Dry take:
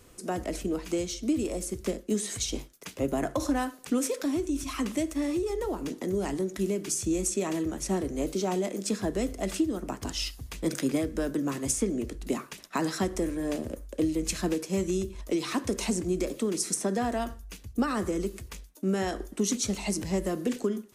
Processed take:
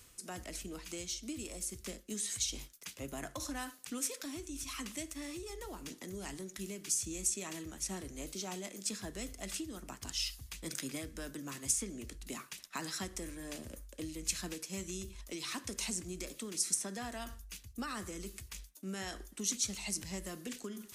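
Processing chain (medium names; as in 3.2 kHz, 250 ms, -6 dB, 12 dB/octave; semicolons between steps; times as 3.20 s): amplifier tone stack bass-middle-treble 5-5-5; reverse; upward compressor, threshold -45 dBFS; reverse; trim +3.5 dB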